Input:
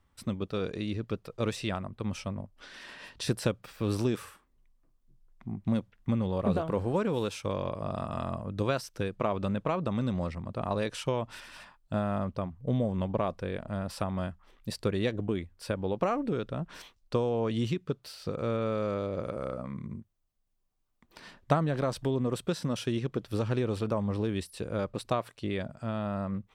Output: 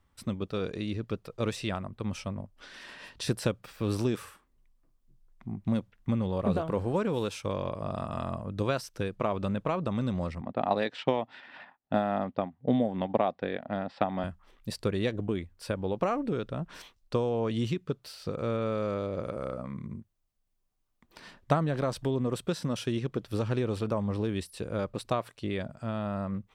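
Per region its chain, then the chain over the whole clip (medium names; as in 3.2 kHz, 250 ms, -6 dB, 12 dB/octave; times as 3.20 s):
10.41–14.24 s: transient shaper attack +4 dB, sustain -7 dB + cabinet simulation 170–7400 Hz, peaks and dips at 260 Hz +6 dB, 770 Hz +9 dB, 1.1 kHz -3 dB, 1.9 kHz +7 dB, 3.6 kHz +4 dB, 6.2 kHz -8 dB + level-controlled noise filter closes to 2 kHz, open at -21.5 dBFS
whole clip: none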